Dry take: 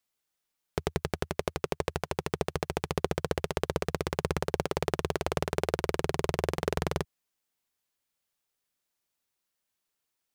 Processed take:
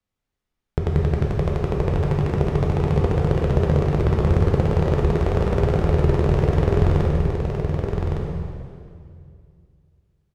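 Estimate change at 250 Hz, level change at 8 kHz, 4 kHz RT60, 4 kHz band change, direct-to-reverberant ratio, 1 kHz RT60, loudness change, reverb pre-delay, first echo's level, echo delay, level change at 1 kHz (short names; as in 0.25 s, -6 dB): +13.0 dB, n/a, 2.0 s, -1.0 dB, -3.5 dB, 2.2 s, +11.5 dB, 9 ms, -5.0 dB, 1.16 s, +5.5 dB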